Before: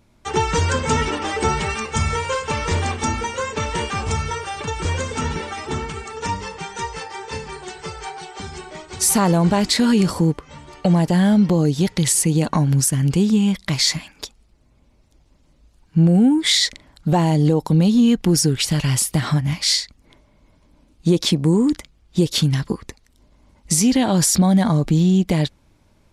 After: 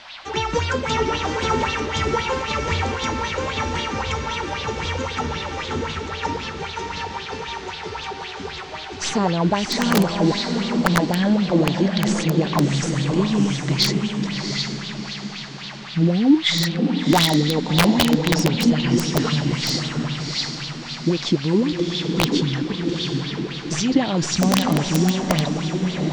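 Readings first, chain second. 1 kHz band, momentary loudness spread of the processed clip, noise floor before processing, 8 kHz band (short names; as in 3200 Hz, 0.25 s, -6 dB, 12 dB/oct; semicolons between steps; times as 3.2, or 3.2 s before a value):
+0.5 dB, 11 LU, -57 dBFS, -7.5 dB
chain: tracing distortion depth 0.022 ms; steep low-pass 6800 Hz 36 dB/oct; band noise 610–4400 Hz -38 dBFS; diffused feedback echo 0.708 s, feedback 42%, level -3 dB; wrapped overs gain 5 dB; LFO bell 3.8 Hz 260–3900 Hz +12 dB; gain -6 dB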